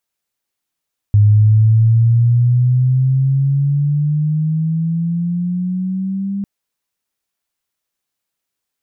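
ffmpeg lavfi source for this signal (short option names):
-f lavfi -i "aevalsrc='pow(10,(-6-12*t/5.3)/20)*sin(2*PI*103*5.3/(11.5*log(2)/12)*(exp(11.5*log(2)/12*t/5.3)-1))':d=5.3:s=44100"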